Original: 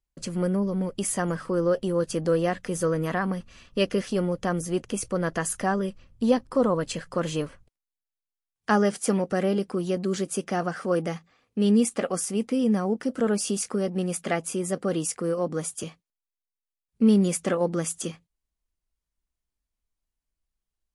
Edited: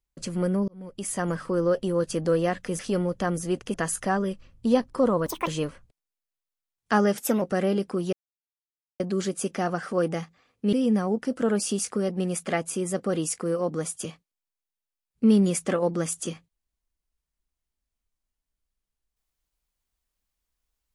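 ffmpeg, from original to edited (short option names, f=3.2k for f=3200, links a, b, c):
-filter_complex "[0:a]asplit=10[a][b][c][d][e][f][g][h][i][j];[a]atrim=end=0.68,asetpts=PTS-STARTPTS,afade=t=out:st=0.676:d=0.004:c=hsin[k];[b]atrim=start=0.68:end=2.792,asetpts=PTS-STARTPTS,afade=t=in:d=0.61[l];[c]atrim=start=4.018:end=4.972[m];[d]atrim=start=5.308:end=6.834[n];[e]atrim=start=6.83:end=7.25,asetpts=PTS-STARTPTS,asetrate=86436,aresample=44100[o];[f]atrim=start=7.246:end=8.954[p];[g]atrim=start=8.95:end=9.22,asetpts=PTS-STARTPTS,asetrate=48951,aresample=44100,atrim=end_sample=10727,asetpts=PTS-STARTPTS[q];[h]atrim=start=9.216:end=9.93,asetpts=PTS-STARTPTS,afade=t=out:st=0.71:d=0.004:c=hsin,apad=pad_dur=0.87[r];[i]atrim=start=9.93:end=11.662,asetpts=PTS-STARTPTS,afade=t=in:d=0.004:c=hsin[s];[j]atrim=start=12.508[t];[k][l]concat=n=2:v=0:a=1[u];[u][m]acrossfade=d=0.004:c1=hsin:c2=hsin[v];[v][n]acrossfade=d=0.004:c1=hsin:c2=hsin[w];[w][o]acrossfade=d=0.004:c1=hsin:c2=hsin[x];[x][p]acrossfade=d=0.004:c1=hsin:c2=hsin[y];[y][q]acrossfade=d=0.004:c1=hsin:c2=hsin[z];[r][s]concat=n=2:v=0:a=1[aa];[z][aa]acrossfade=d=0.004:c1=hsin:c2=hsin[ab];[ab][t]acrossfade=d=0.004:c1=hsin:c2=hsin"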